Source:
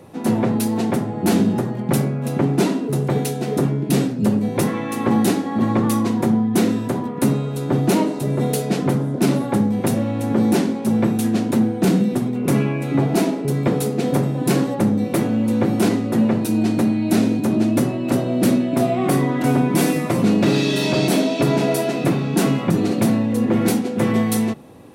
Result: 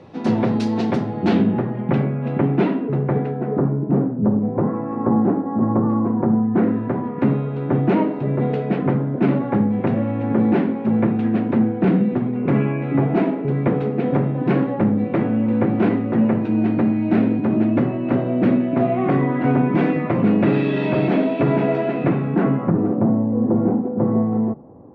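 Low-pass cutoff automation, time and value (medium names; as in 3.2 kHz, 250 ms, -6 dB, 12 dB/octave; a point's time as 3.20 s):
low-pass 24 dB/octave
1.11 s 5.1 kHz
1.51 s 2.7 kHz
2.70 s 2.7 kHz
3.87 s 1.2 kHz
6.04 s 1.2 kHz
7.17 s 2.4 kHz
22.10 s 2.4 kHz
23.16 s 1 kHz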